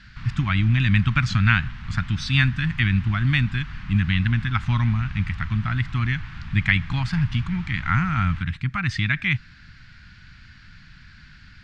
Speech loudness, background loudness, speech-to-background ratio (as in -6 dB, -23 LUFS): -23.0 LUFS, -38.0 LUFS, 15.0 dB